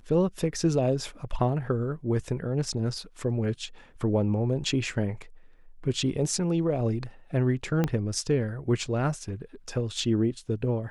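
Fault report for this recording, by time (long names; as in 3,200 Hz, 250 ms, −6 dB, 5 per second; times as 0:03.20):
0:07.84: click −13 dBFS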